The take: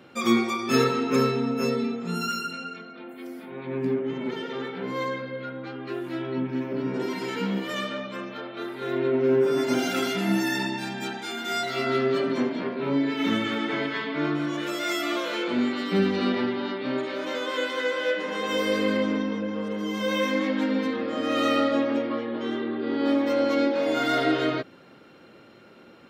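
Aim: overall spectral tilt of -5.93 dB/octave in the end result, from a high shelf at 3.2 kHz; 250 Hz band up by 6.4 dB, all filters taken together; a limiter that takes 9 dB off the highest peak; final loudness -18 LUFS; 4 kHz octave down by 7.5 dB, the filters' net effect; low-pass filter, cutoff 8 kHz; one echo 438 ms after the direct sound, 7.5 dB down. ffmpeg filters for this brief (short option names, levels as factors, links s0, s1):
-af "lowpass=8000,equalizer=f=250:t=o:g=7.5,highshelf=f=3200:g=-5.5,equalizer=f=4000:t=o:g=-6,alimiter=limit=0.211:level=0:latency=1,aecho=1:1:438:0.422,volume=1.88"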